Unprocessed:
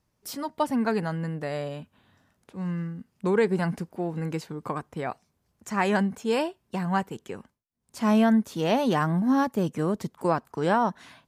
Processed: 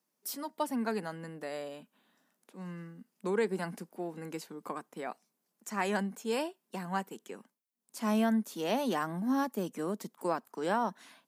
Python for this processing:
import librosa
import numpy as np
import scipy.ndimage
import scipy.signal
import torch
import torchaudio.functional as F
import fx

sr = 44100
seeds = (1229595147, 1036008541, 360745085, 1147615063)

y = scipy.signal.sosfilt(scipy.signal.butter(6, 190.0, 'highpass', fs=sr, output='sos'), x)
y = fx.high_shelf(y, sr, hz=7700.0, db=12.0)
y = y * 10.0 ** (-7.5 / 20.0)